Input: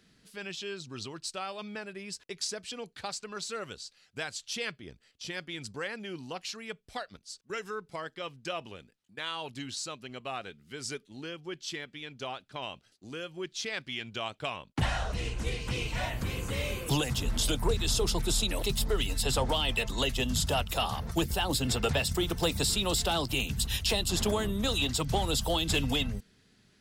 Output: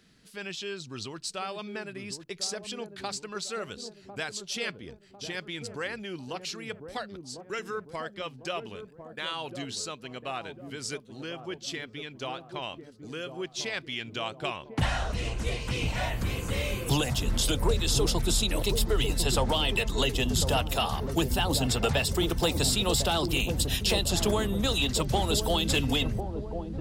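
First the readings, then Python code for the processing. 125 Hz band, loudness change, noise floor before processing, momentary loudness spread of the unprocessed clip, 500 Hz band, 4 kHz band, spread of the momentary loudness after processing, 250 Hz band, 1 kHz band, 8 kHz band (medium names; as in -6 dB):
+3.5 dB, +2.5 dB, -67 dBFS, 13 LU, +3.0 dB, +2.0 dB, 13 LU, +3.0 dB, +2.5 dB, +2.0 dB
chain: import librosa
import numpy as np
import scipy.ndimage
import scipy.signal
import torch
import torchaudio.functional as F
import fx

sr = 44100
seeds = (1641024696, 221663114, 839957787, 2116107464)

y = fx.echo_wet_lowpass(x, sr, ms=1050, feedback_pct=47, hz=620.0, wet_db=-5.5)
y = y * librosa.db_to_amplitude(2.0)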